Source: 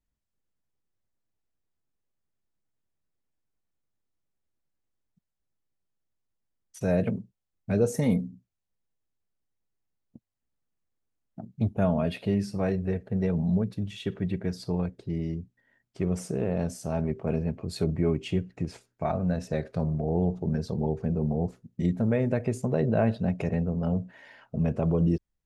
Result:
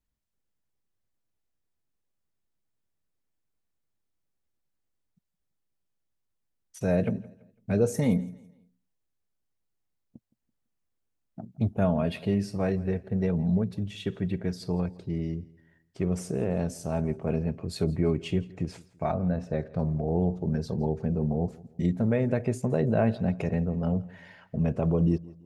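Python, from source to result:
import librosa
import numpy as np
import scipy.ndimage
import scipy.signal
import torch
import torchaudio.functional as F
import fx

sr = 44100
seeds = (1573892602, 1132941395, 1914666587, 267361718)

y = fx.lowpass(x, sr, hz=1600.0, slope=6, at=(19.14, 19.79))
y = fx.echo_feedback(y, sr, ms=167, feedback_pct=37, wet_db=-22.0)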